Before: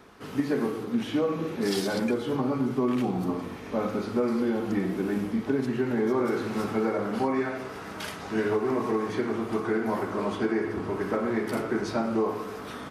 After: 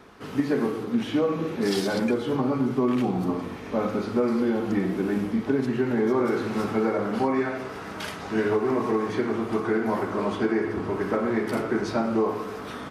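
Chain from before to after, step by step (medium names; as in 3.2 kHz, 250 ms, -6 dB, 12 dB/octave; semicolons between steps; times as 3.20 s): treble shelf 7.7 kHz -5 dB; trim +2.5 dB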